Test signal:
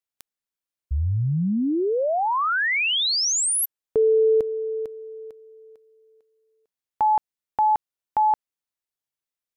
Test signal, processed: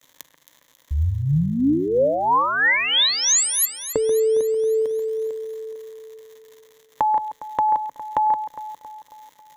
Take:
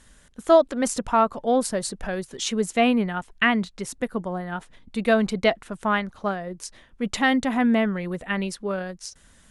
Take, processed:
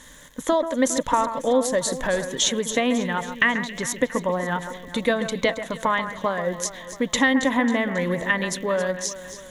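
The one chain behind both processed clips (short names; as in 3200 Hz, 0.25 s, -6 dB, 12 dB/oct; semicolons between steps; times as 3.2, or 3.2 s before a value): crackle 210/s -48 dBFS; low shelf 120 Hz -9.5 dB; compressor 3:1, threshold -30 dBFS; ripple EQ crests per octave 1.1, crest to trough 9 dB; echo with dull and thin repeats by turns 0.136 s, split 2400 Hz, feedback 73%, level -10 dB; gain +8.5 dB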